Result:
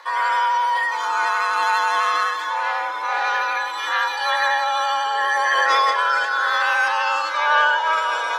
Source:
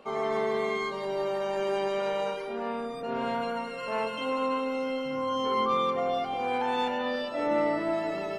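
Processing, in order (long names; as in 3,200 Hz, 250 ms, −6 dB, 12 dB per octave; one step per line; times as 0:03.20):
frequency shifter +300 Hz
formants moved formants +5 semitones
feedback delay with all-pass diffusion 532 ms, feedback 63%, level −14 dB
pitch vibrato 12 Hz 21 cents
level +9 dB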